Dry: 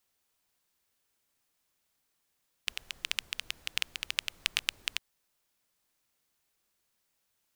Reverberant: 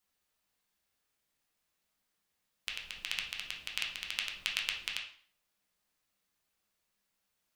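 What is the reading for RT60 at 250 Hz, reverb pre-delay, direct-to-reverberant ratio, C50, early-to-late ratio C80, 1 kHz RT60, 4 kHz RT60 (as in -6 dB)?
0.60 s, 5 ms, -0.5 dB, 6.5 dB, 11.0 dB, 0.50 s, 0.45 s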